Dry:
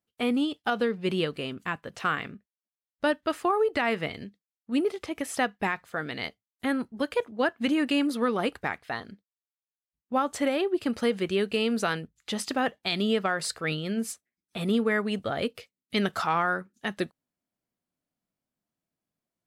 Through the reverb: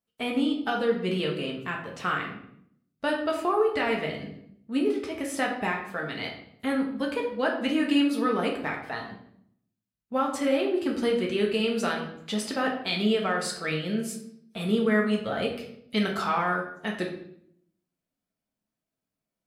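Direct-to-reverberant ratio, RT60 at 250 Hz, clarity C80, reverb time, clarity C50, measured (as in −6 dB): −1.0 dB, 0.85 s, 9.5 dB, 0.70 s, 6.0 dB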